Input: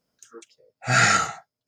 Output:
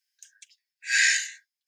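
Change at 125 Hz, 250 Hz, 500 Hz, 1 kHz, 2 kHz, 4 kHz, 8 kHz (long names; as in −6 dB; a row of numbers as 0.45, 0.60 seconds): below −40 dB, below −40 dB, below −40 dB, below −40 dB, −1.0 dB, 0.0 dB, 0.0 dB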